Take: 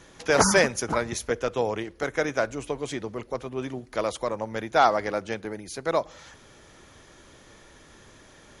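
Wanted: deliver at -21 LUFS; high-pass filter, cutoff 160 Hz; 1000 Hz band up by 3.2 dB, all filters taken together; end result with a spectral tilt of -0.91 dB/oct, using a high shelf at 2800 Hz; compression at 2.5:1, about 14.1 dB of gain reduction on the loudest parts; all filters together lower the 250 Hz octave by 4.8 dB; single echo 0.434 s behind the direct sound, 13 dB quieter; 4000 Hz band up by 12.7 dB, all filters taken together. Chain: HPF 160 Hz; bell 250 Hz -6 dB; bell 1000 Hz +3 dB; high shelf 2800 Hz +9 dB; bell 4000 Hz +8.5 dB; compressor 2.5:1, threshold -32 dBFS; echo 0.434 s -13 dB; gain +12 dB

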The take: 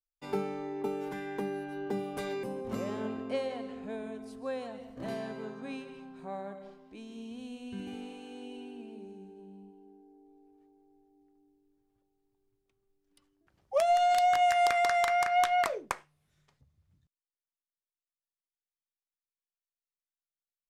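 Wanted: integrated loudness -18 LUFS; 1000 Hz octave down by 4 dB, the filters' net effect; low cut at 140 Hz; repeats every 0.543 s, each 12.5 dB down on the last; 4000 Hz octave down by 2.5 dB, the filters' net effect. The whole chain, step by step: HPF 140 Hz; bell 1000 Hz -7.5 dB; bell 4000 Hz -3 dB; feedback echo 0.543 s, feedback 24%, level -12.5 dB; gain +17 dB

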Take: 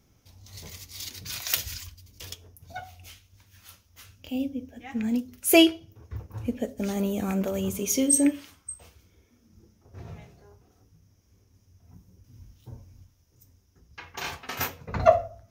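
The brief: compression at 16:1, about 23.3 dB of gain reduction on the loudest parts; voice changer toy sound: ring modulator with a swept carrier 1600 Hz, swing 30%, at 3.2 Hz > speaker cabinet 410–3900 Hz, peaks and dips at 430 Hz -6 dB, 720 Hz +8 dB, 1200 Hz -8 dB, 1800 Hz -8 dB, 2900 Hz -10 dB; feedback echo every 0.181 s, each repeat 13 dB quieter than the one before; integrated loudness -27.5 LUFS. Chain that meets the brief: compressor 16:1, threshold -35 dBFS; feedback echo 0.181 s, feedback 22%, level -13 dB; ring modulator with a swept carrier 1600 Hz, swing 30%, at 3.2 Hz; speaker cabinet 410–3900 Hz, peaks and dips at 430 Hz -6 dB, 720 Hz +8 dB, 1200 Hz -8 dB, 1800 Hz -8 dB, 2900 Hz -10 dB; gain +20.5 dB

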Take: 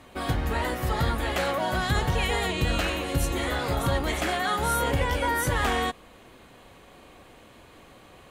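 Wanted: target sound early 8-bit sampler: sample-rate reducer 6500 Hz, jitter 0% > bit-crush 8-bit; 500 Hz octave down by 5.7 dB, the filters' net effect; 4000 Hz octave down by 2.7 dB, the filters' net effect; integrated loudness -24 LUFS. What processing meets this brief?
bell 500 Hz -7 dB; bell 4000 Hz -3.5 dB; sample-rate reducer 6500 Hz, jitter 0%; bit-crush 8-bit; gain +4 dB

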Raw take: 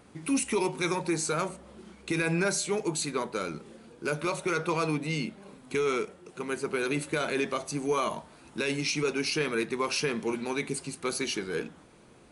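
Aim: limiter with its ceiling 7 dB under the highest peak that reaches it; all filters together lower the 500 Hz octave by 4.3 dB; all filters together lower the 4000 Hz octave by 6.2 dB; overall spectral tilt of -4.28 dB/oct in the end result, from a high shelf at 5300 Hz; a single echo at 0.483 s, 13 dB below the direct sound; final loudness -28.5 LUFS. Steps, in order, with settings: bell 500 Hz -5.5 dB; bell 4000 Hz -6.5 dB; high shelf 5300 Hz -3.5 dB; limiter -25.5 dBFS; echo 0.483 s -13 dB; gain +7.5 dB

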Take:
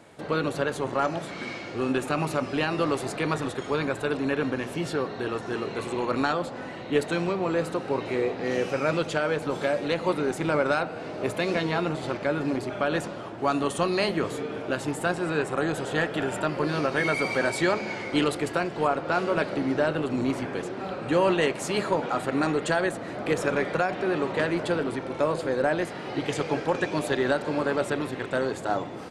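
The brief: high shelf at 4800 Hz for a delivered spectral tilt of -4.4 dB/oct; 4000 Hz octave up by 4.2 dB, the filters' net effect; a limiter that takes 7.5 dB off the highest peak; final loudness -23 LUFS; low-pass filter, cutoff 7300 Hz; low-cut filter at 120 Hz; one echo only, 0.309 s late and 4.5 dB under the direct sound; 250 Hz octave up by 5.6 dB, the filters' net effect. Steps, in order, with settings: HPF 120 Hz; LPF 7300 Hz; bell 250 Hz +7.5 dB; bell 4000 Hz +3.5 dB; high shelf 4800 Hz +4.5 dB; limiter -15 dBFS; echo 0.309 s -4.5 dB; gain +2 dB

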